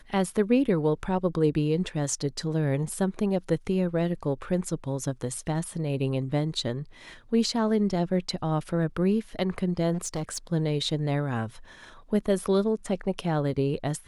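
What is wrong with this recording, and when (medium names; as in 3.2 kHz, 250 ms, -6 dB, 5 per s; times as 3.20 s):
9.93–10.38 s: clipped -26.5 dBFS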